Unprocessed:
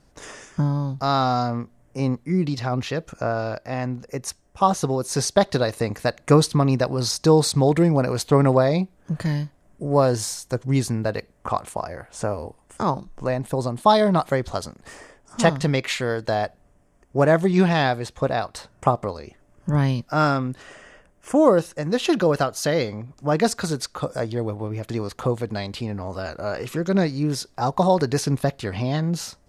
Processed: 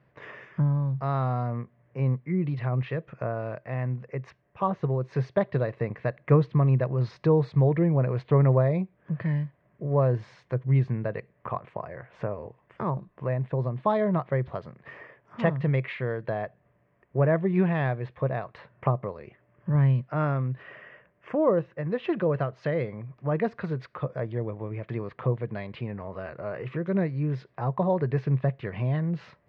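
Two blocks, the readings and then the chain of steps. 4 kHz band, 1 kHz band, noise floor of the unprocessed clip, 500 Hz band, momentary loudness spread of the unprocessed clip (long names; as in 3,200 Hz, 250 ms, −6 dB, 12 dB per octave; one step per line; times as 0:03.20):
below −20 dB, −9.5 dB, −59 dBFS, −6.5 dB, 13 LU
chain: loudspeaker in its box 110–2,200 Hz, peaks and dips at 130 Hz +9 dB, 270 Hz −8 dB, 800 Hz −8 dB, 1,400 Hz −7 dB
one half of a high-frequency compander encoder only
level −5 dB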